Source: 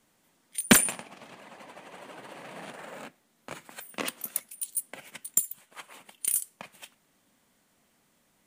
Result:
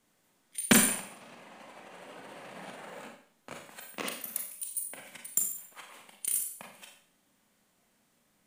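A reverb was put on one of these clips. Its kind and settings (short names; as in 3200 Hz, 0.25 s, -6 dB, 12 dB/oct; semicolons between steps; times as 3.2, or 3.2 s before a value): Schroeder reverb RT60 0.53 s, combs from 30 ms, DRR 2 dB; gain -4.5 dB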